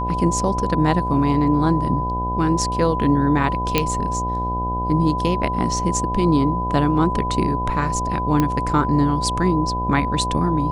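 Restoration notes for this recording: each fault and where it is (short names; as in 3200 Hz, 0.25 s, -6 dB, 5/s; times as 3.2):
buzz 60 Hz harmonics 16 -26 dBFS
tone 1000 Hz -23 dBFS
3.78 pop -2 dBFS
8.4 pop -6 dBFS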